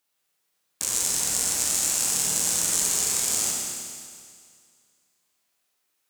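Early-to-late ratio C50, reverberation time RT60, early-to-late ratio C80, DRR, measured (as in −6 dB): −1.0 dB, 2.1 s, 1.0 dB, −2.0 dB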